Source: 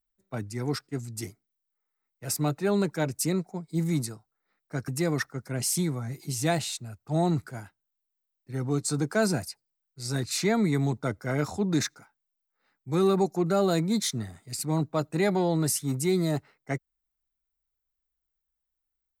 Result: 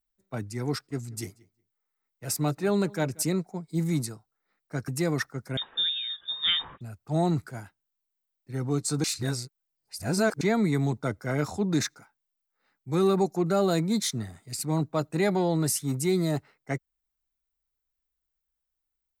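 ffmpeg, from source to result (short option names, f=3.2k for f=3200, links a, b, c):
-filter_complex "[0:a]asettb=1/sr,asplit=3[a][b][c];[a]atrim=end=0.724[d];[b]atrim=start=0.72:end=3.23,asetpts=PTS-STARTPTS,afade=t=in:d=0.004:c=qsin,afade=t=out:st=2.506:d=0.004:c=qsin,asplit=2[e][f];[f]adelay=183,lowpass=f=3.5k:p=1,volume=-23dB,asplit=2[g][h];[h]adelay=183,lowpass=f=3.5k:p=1,volume=0.15[i];[e][g][i]amix=inputs=3:normalize=0,atrim=end_sample=110691[j];[c]atrim=start=3.226[k];[d][j]acrossfade=d=0.004:c1=hsin:c2=qsin[l];[l][k]acrossfade=d=0.004:c1=qsin:c2=hsin,asettb=1/sr,asplit=3[m][n][o];[m]atrim=end=5.574[p];[n]atrim=start=5.57:end=6.81,asetpts=PTS-STARTPTS,afade=t=in:d=0.004:c=qsin,afade=t=out:st=1.236:d=0.004:c=qsin,lowpass=f=3.2k:t=q:w=0.5098,lowpass=f=3.2k:t=q:w=0.6013,lowpass=f=3.2k:t=q:w=0.9,lowpass=f=3.2k:t=q:w=2.563,afreqshift=-3800[q];[o]atrim=start=6.806[r];[p][q]acrossfade=d=0.004:c1=hsin:c2=qsin[s];[s][r]acrossfade=d=0.004:c1=qsin:c2=hsin,asplit=3[t][u][v];[t]atrim=end=9.042[w];[u]atrim=start=9.038:end=10.412,asetpts=PTS-STARTPTS,areverse[x];[v]atrim=start=10.408[y];[w][x]acrossfade=d=0.004:c1=hsin:c2=hsin[z];[z][y]acrossfade=d=0.004:c1=hsin:c2=hsin"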